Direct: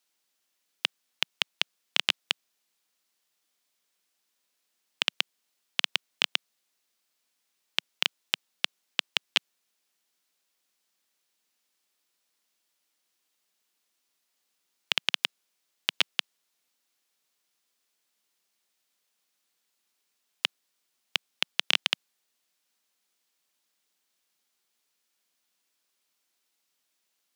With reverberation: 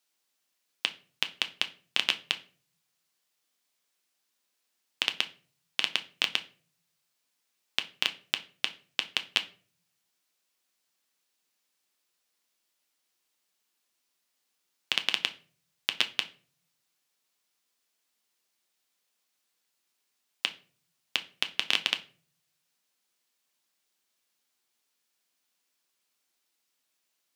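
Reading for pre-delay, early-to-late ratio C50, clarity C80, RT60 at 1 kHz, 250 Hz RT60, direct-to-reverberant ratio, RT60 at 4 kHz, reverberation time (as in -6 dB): 8 ms, 16.5 dB, 22.0 dB, 0.35 s, 1.0 s, 7.5 dB, 0.30 s, 0.40 s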